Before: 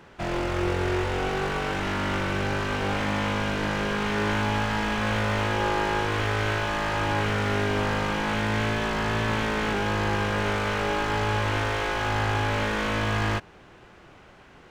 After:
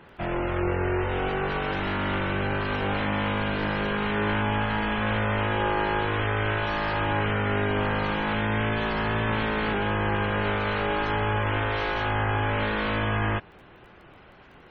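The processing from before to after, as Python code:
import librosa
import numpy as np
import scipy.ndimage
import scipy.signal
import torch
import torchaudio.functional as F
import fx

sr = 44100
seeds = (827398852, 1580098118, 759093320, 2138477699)

y = fx.spec_gate(x, sr, threshold_db=-25, keep='strong')
y = fx.dmg_crackle(y, sr, seeds[0], per_s=14.0, level_db=-48.0)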